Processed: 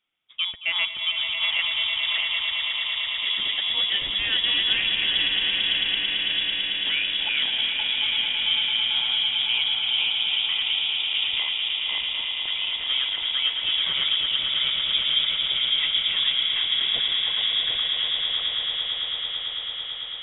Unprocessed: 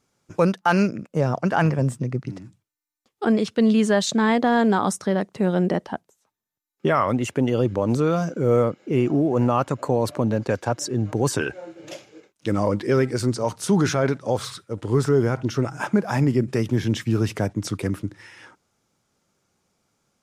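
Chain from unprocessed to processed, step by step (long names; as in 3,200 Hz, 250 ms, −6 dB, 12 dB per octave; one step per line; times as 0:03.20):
feedback delay that plays each chunk backwards 377 ms, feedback 45%, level −1 dB
low-shelf EQ 200 Hz −10 dB
echo that builds up and dies away 111 ms, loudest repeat 8, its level −9.5 dB
voice inversion scrambler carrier 3,600 Hz
level −6.5 dB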